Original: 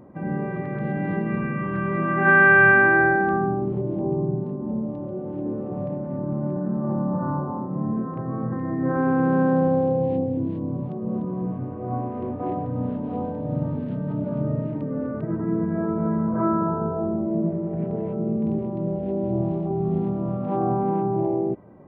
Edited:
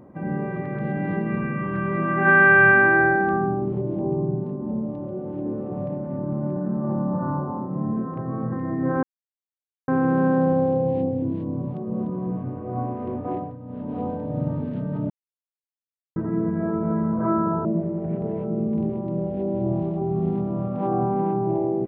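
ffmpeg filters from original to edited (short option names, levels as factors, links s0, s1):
-filter_complex "[0:a]asplit=7[s0][s1][s2][s3][s4][s5][s6];[s0]atrim=end=9.03,asetpts=PTS-STARTPTS,afade=t=out:st=9.026:d=0.004:c=hsin,apad=pad_dur=0.85[s7];[s1]atrim=start=9.03:end=12.73,asetpts=PTS-STARTPTS,afade=t=in:d=0.004:c=hsin,afade=t=out:st=3.43:d=0.27:silence=0.237137[s8];[s2]atrim=start=12.73:end=12.82,asetpts=PTS-STARTPTS,volume=0.237[s9];[s3]atrim=start=12.82:end=14.25,asetpts=PTS-STARTPTS,afade=t=in:d=0.27:silence=0.237137,afade=t=out:st=1.426:d=0.004:c=hsin[s10];[s4]atrim=start=14.25:end=15.31,asetpts=PTS-STARTPTS,volume=0[s11];[s5]atrim=start=15.31:end=16.802,asetpts=PTS-STARTPTS,afade=t=in:d=0.004:c=hsin[s12];[s6]atrim=start=17.338[s13];[s7][s8][s9][s10][s11][s12]concat=n=6:v=0:a=1[s14];[s14][s13]acrossfade=d=0.004:c1=hsin:c2=hsin"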